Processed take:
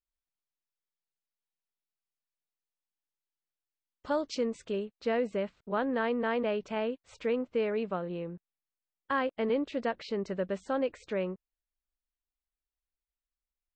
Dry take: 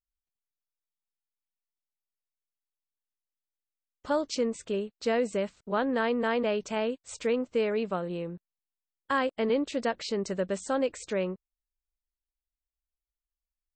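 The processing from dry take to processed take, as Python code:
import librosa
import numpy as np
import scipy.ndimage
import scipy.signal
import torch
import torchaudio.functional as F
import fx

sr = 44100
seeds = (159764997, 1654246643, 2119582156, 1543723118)

y = fx.lowpass(x, sr, hz=fx.steps((0.0, 5400.0), (4.85, 3300.0)), slope=12)
y = y * 10.0 ** (-2.5 / 20.0)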